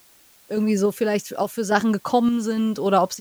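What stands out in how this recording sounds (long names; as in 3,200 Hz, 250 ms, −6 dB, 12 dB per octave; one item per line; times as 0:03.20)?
sample-and-hold tremolo 3.5 Hz, depth 70%
a quantiser's noise floor 10 bits, dither triangular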